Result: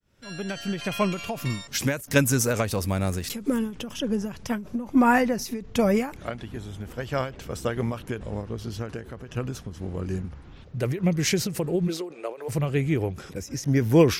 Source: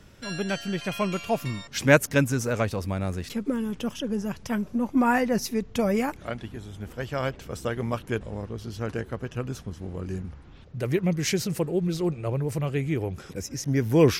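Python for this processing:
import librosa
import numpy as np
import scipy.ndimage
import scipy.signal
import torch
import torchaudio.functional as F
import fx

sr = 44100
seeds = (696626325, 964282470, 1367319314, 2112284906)

y = fx.fade_in_head(x, sr, length_s=0.77)
y = fx.high_shelf(y, sr, hz=5900.0, db=11.5, at=(1.5, 3.59))
y = fx.highpass(y, sr, hz=fx.line((11.87, 220.0), (12.48, 480.0)), slope=24, at=(11.87, 12.48), fade=0.02)
y = fx.end_taper(y, sr, db_per_s=130.0)
y = y * librosa.db_to_amplitude(3.0)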